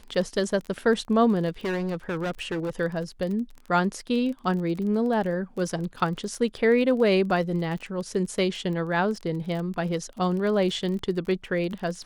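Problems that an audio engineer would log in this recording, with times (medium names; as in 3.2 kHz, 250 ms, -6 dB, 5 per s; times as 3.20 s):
crackle 30 per s -33 dBFS
1.64–2.70 s: clipped -25 dBFS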